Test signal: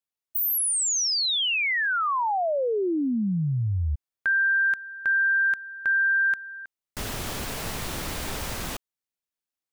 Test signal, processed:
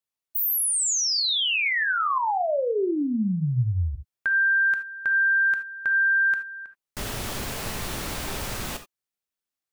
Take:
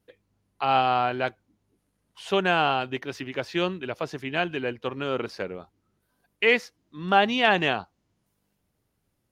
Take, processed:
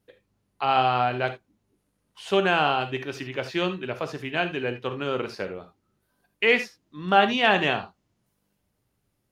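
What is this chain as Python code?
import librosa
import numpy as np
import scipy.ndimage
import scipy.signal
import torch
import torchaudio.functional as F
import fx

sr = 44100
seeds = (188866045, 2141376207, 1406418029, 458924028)

y = fx.rev_gated(x, sr, seeds[0], gate_ms=100, shape='flat', drr_db=7.5)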